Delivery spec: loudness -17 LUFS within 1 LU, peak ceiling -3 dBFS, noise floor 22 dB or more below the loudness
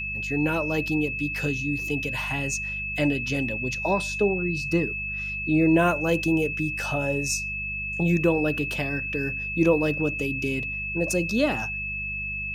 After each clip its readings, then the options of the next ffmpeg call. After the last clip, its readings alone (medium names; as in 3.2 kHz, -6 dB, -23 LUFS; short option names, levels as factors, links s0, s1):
hum 50 Hz; highest harmonic 200 Hz; hum level -37 dBFS; steady tone 2.6 kHz; tone level -29 dBFS; loudness -25.0 LUFS; peak level -8.0 dBFS; loudness target -17.0 LUFS
-> -af "bandreject=f=50:t=h:w=4,bandreject=f=100:t=h:w=4,bandreject=f=150:t=h:w=4,bandreject=f=200:t=h:w=4"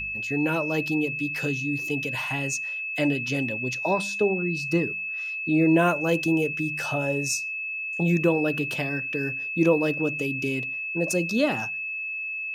hum not found; steady tone 2.6 kHz; tone level -29 dBFS
-> -af "bandreject=f=2600:w=30"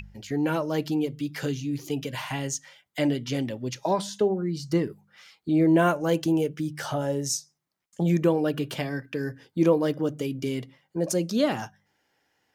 steady tone not found; loudness -27.0 LUFS; peak level -8.5 dBFS; loudness target -17.0 LUFS
-> -af "volume=3.16,alimiter=limit=0.708:level=0:latency=1"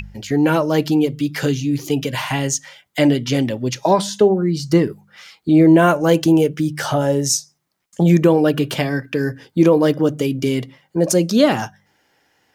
loudness -17.5 LUFS; peak level -3.0 dBFS; noise floor -66 dBFS